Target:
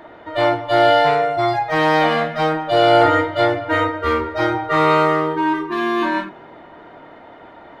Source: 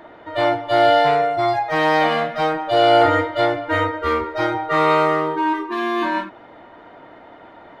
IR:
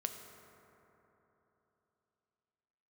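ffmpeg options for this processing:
-filter_complex "[0:a]asplit=2[link_01][link_02];[1:a]atrim=start_sample=2205,lowshelf=frequency=190:gain=11.5,adelay=25[link_03];[link_02][link_03]afir=irnorm=-1:irlink=0,volume=-15.5dB[link_04];[link_01][link_04]amix=inputs=2:normalize=0,volume=1.5dB"

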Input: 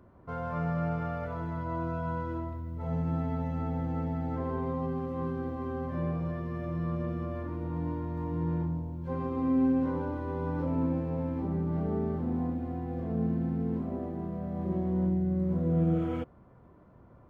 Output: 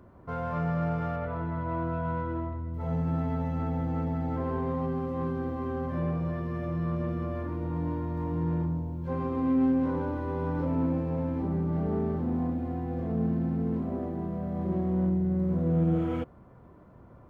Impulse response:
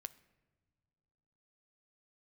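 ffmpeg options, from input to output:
-filter_complex "[0:a]asettb=1/sr,asplit=3[link_01][link_02][link_03];[link_01]atrim=end=1.164[link_04];[link_02]atrim=start=1.16:end=2.74,asetpts=PTS-STARTPTS,afade=type=in:duration=0.004:curve=qsin,afade=type=out:start_time=1.576:duration=0.004:curve=qsin,lowpass=2900[link_05];[link_03]atrim=start=2.736[link_06];[link_04][link_05]acrossfade=duration=0.004:curve1=hsin:curve2=qsin[link_07];[link_07][link_06]acrossfade=duration=0.004:curve1=qsin:curve2=hsin,asplit=2[link_08][link_09];[link_09]asoftclip=type=tanh:threshold=-33.5dB,volume=-6dB[link_10];[link_08][link_10]amix=inputs=2:normalize=0"

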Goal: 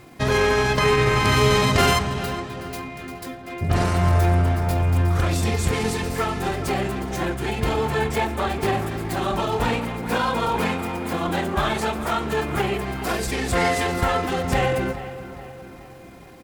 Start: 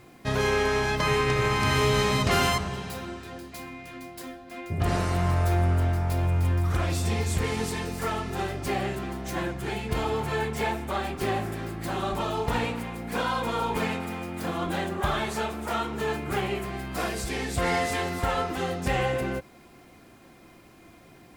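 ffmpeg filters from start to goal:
ffmpeg -i in.wav -filter_complex "[0:a]atempo=1.3,asplit=2[link_01][link_02];[link_02]adelay=419,lowpass=frequency=3000:poles=1,volume=-13dB,asplit=2[link_03][link_04];[link_04]adelay=419,lowpass=frequency=3000:poles=1,volume=0.53,asplit=2[link_05][link_06];[link_06]adelay=419,lowpass=frequency=3000:poles=1,volume=0.53,asplit=2[link_07][link_08];[link_08]adelay=419,lowpass=frequency=3000:poles=1,volume=0.53,asplit=2[link_09][link_10];[link_10]adelay=419,lowpass=frequency=3000:poles=1,volume=0.53[link_11];[link_03][link_05][link_07][link_09][link_11]amix=inputs=5:normalize=0[link_12];[link_01][link_12]amix=inputs=2:normalize=0,volume=5.5dB" out.wav

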